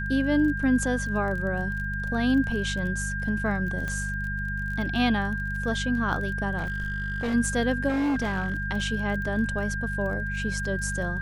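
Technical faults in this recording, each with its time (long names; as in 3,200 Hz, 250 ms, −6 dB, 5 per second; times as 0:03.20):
surface crackle 24 per second −34 dBFS
mains hum 50 Hz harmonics 4 −32 dBFS
whistle 1,600 Hz −31 dBFS
0:03.88: click −19 dBFS
0:06.57–0:07.35: clipping −24.5 dBFS
0:07.88–0:08.66: clipping −22.5 dBFS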